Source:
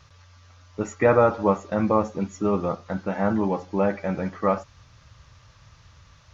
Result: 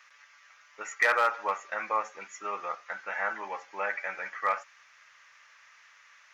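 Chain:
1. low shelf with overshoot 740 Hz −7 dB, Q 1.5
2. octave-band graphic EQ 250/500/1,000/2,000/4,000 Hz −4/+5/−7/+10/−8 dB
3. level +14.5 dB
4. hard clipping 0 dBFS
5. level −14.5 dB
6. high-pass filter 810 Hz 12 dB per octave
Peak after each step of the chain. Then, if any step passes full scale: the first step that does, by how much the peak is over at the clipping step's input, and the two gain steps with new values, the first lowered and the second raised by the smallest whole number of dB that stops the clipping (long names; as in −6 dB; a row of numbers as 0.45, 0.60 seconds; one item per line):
−9.0, −9.0, +5.5, 0.0, −14.5, −12.0 dBFS
step 3, 5.5 dB
step 3 +8.5 dB, step 5 −8.5 dB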